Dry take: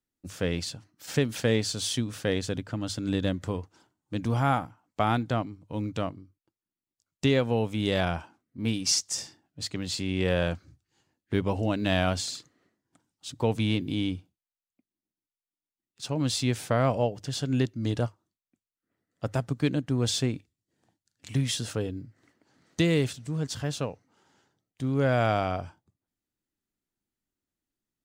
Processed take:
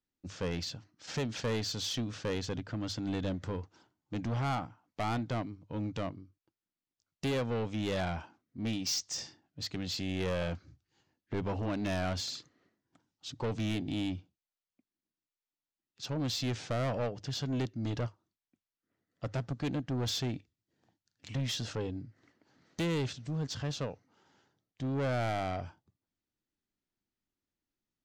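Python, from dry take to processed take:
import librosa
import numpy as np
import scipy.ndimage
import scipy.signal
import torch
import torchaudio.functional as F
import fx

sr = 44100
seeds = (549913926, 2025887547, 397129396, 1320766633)

y = scipy.signal.sosfilt(scipy.signal.cheby2(4, 40, 11000.0, 'lowpass', fs=sr, output='sos'), x)
y = 10.0 ** (-26.5 / 20.0) * np.tanh(y / 10.0 ** (-26.5 / 20.0))
y = y * 10.0 ** (-2.0 / 20.0)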